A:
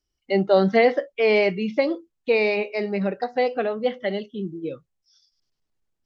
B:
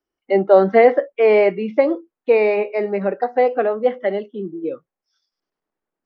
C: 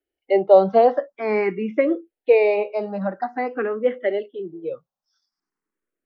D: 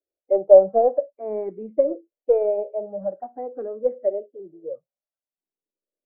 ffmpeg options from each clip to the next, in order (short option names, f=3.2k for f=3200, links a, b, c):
-filter_complex "[0:a]acrossover=split=230 2000:gain=0.0891 1 0.112[a][b][c];[a][b][c]amix=inputs=3:normalize=0,volume=6.5dB"
-filter_complex "[0:a]asplit=2[a][b];[b]afreqshift=0.49[c];[a][c]amix=inputs=2:normalize=1"
-af "aeval=exprs='0.794*(cos(1*acos(clip(val(0)/0.794,-1,1)))-cos(1*PI/2))+0.0251*(cos(4*acos(clip(val(0)/0.794,-1,1)))-cos(4*PI/2))+0.0251*(cos(7*acos(clip(val(0)/0.794,-1,1)))-cos(7*PI/2))':c=same,lowpass=f=590:t=q:w=4.9,volume=-11dB"